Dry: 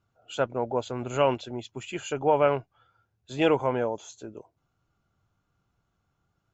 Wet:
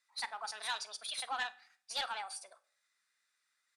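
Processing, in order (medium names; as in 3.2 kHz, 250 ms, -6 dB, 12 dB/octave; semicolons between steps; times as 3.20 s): Bessel high-pass 2 kHz, order 2; treble shelf 4.7 kHz +10.5 dB; in parallel at -2 dB: compression, threshold -48 dBFS, peak gain reduction 19.5 dB; on the sum: formant shift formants -4 st; saturation -29.5 dBFS, distortion -12 dB; distance through air 140 m; delay 78 ms -20.5 dB; FDN reverb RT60 0.94 s, low-frequency decay 1.05×, high-frequency decay 0.75×, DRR 15 dB; speed mistake 45 rpm record played at 78 rpm; trim +1 dB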